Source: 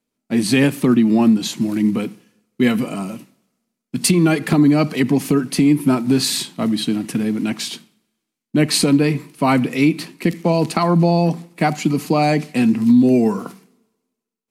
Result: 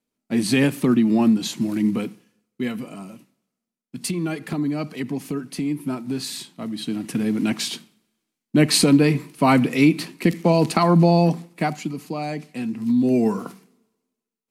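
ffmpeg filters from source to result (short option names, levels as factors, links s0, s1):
-af "volume=6.31,afade=t=out:st=2:d=0.69:silence=0.421697,afade=t=in:st=6.71:d=0.75:silence=0.298538,afade=t=out:st=11.22:d=0.72:silence=0.266073,afade=t=in:st=12.73:d=0.55:silence=0.354813"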